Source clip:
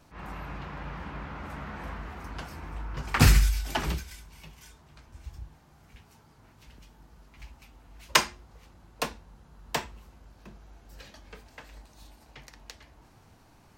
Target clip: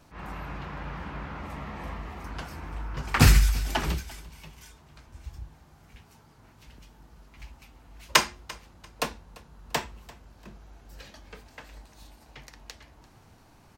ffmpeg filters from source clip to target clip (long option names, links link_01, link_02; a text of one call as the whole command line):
ffmpeg -i in.wav -filter_complex "[0:a]asettb=1/sr,asplit=3[link_01][link_02][link_03];[link_01]atrim=end=1.414[link_04];[link_02]atrim=start=1.41:end=2.25,asetpts=PTS-STARTPTS,afade=type=in:duration=0.004:curve=qsin,afade=type=out:start_time=0.836:duration=0.004:curve=qsin,bandreject=frequency=1500:width=6.1[link_05];[link_03]atrim=start=2.246[link_06];[link_04][link_05]acrossfade=duration=0.004:curve1=hsin:curve2=qsin[link_07];[link_07][link_06]acrossfade=duration=0.004:curve1=qsin:curve2=hsin,aecho=1:1:343|686:0.0891|0.0232,volume=1.5dB" out.wav